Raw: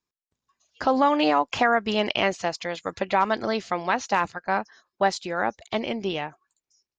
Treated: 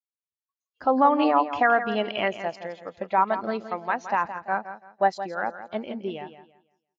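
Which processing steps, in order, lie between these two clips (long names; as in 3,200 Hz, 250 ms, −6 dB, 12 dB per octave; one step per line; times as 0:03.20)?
dynamic equaliser 1,600 Hz, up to +3 dB, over −29 dBFS, Q 0.87
repeating echo 168 ms, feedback 41%, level −8 dB
every bin expanded away from the loudest bin 1.5 to 1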